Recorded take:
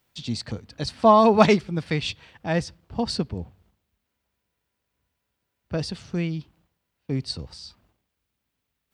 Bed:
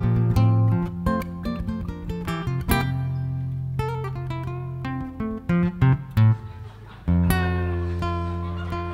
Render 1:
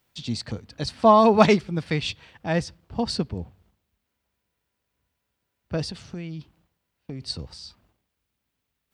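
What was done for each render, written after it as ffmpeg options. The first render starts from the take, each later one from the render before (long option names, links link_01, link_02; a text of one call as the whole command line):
ffmpeg -i in.wav -filter_complex "[0:a]asettb=1/sr,asplit=3[link_01][link_02][link_03];[link_01]atrim=end=5.894[link_04];[link_02]atrim=start=5.89:end=7.21,asetpts=PTS-STARTPTS,afade=type=in:duration=0.004:curve=qsin,afade=type=out:start_time=1.316:duration=0.004:curve=qsin,acompressor=threshold=-30dB:ratio=12:attack=3.2:release=140:knee=1:detection=peak[link_05];[link_03]atrim=start=7.206[link_06];[link_04][link_05]acrossfade=duration=0.004:curve1=hsin:curve2=qsin[link_07];[link_07][link_06]acrossfade=duration=0.004:curve1=qsin:curve2=hsin" out.wav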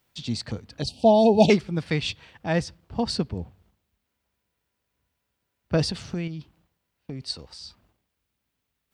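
ffmpeg -i in.wav -filter_complex "[0:a]asettb=1/sr,asplit=3[link_01][link_02][link_03];[link_01]atrim=end=0.824[link_04];[link_02]atrim=start=0.82:end=1.5,asetpts=PTS-STARTPTS,afade=type=in:duration=0.004:curve=qsin,afade=type=out:start_time=0.676:duration=0.004:curve=qsin,asuperstop=centerf=1500:order=12:qfactor=0.82[link_05];[link_03]atrim=start=1.496[link_06];[link_04][link_05]acrossfade=duration=0.004:curve1=hsin:curve2=qsin[link_07];[link_07][link_06]acrossfade=duration=0.004:curve1=qsin:curve2=hsin,asettb=1/sr,asplit=3[link_08][link_09][link_10];[link_08]atrim=end=5.734[link_11];[link_09]atrim=start=5.73:end=6.28,asetpts=PTS-STARTPTS,afade=type=in:duration=0.004:curve=qsin,afade=type=out:start_time=0.546:duration=0.004:curve=qsin,acontrast=28[link_12];[link_10]atrim=start=6.276[link_13];[link_11][link_12]acrossfade=duration=0.004:curve1=hsin:curve2=qsin[link_14];[link_14][link_13]acrossfade=duration=0.004:curve1=qsin:curve2=hsin,asettb=1/sr,asplit=3[link_15][link_16][link_17];[link_15]atrim=end=7.214[link_18];[link_16]atrim=start=7.21:end=7.61,asetpts=PTS-STARTPTS,afade=type=in:duration=0.004:curve=qsin,afade=type=out:start_time=0.396:duration=0.004:curve=qsin,equalizer=frequency=110:width=0.49:gain=-11.5[link_19];[link_17]atrim=start=7.606[link_20];[link_18][link_19]acrossfade=duration=0.004:curve1=hsin:curve2=qsin[link_21];[link_21][link_20]acrossfade=duration=0.004:curve1=qsin:curve2=hsin" out.wav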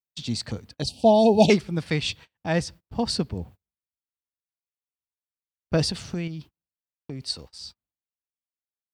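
ffmpeg -i in.wav -af "agate=range=-33dB:threshold=-43dB:ratio=16:detection=peak,highshelf=frequency=8300:gain=9.5" out.wav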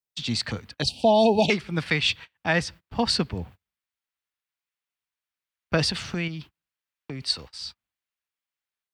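ffmpeg -i in.wav -filter_complex "[0:a]acrossover=split=130|1100|3500[link_01][link_02][link_03][link_04];[link_03]dynaudnorm=framelen=130:gausssize=3:maxgain=11dB[link_05];[link_01][link_02][link_05][link_04]amix=inputs=4:normalize=0,alimiter=limit=-10dB:level=0:latency=1:release=270" out.wav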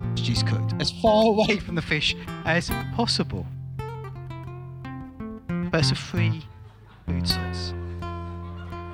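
ffmpeg -i in.wav -i bed.wav -filter_complex "[1:a]volume=-7dB[link_01];[0:a][link_01]amix=inputs=2:normalize=0" out.wav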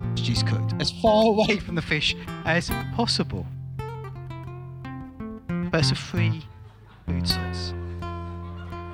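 ffmpeg -i in.wav -af anull out.wav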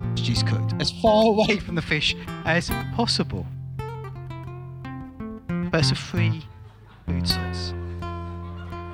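ffmpeg -i in.wav -af "volume=1dB" out.wav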